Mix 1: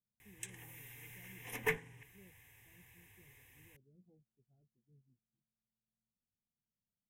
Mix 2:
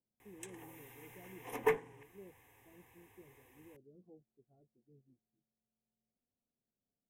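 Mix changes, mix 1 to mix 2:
background -4.5 dB; master: add band shelf 570 Hz +12 dB 2.6 oct

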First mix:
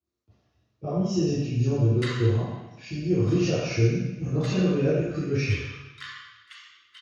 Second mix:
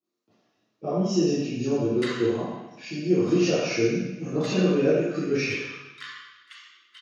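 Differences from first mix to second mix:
speech +3.5 dB; master: add HPF 190 Hz 24 dB/oct

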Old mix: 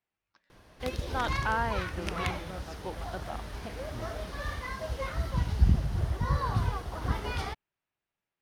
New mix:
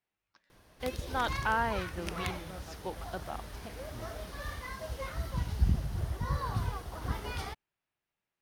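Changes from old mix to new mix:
background -4.5 dB; master: add high shelf 8900 Hz +10.5 dB

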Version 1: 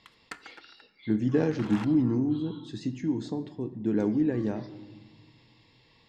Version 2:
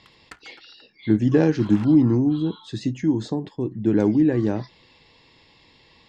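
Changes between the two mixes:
speech +10.5 dB; reverb: off

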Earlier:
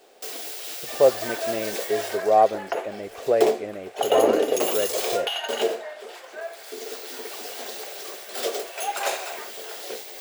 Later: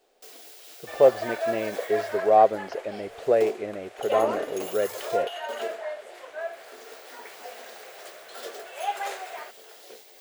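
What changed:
first sound -11.5 dB; second sound +3.5 dB; reverb: off

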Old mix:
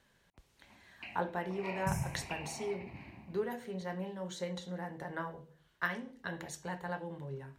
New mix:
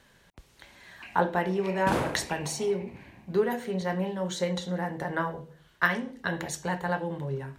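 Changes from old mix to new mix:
speech +10.0 dB; second sound: remove brick-wall FIR band-stop 200–5100 Hz

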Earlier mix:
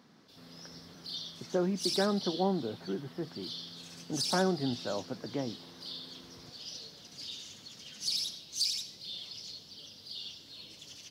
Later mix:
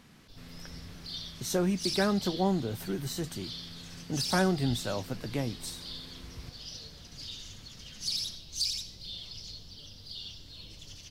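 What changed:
speech: remove Gaussian blur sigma 4.6 samples; master: remove HPF 210 Hz 12 dB/oct

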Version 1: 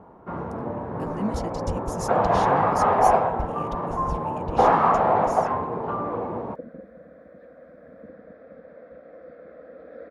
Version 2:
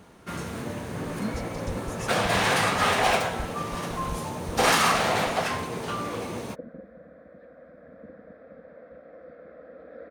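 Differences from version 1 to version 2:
speech -4.5 dB; first sound: remove synth low-pass 940 Hz, resonance Q 2.3; master: add bell 420 Hz -2.5 dB 1.7 oct

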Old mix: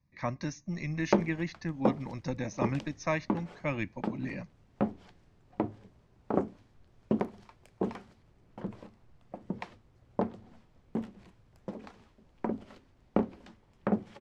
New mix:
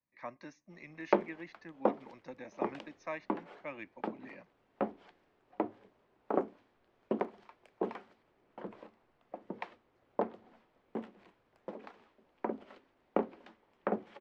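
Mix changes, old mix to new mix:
speech -8.5 dB; master: add three-band isolator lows -21 dB, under 270 Hz, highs -14 dB, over 3700 Hz

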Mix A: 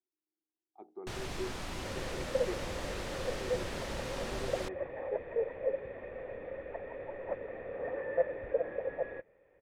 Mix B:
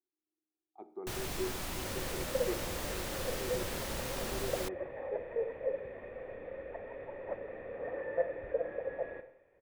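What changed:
first sound: remove air absorption 61 m; second sound -6.0 dB; reverb: on, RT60 0.75 s

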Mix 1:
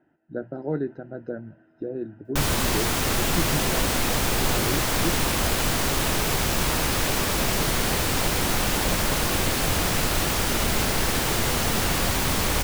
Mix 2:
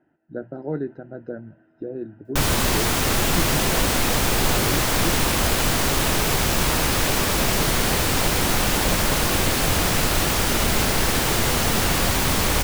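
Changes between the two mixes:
speech: add air absorption 77 m; background +3.0 dB

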